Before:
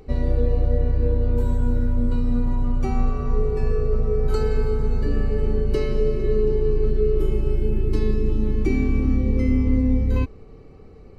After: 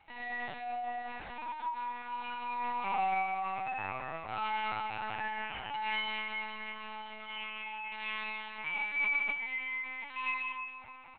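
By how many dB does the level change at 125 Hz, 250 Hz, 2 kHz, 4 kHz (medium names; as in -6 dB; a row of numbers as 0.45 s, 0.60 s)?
-35.5 dB, -28.0 dB, +8.0 dB, +4.5 dB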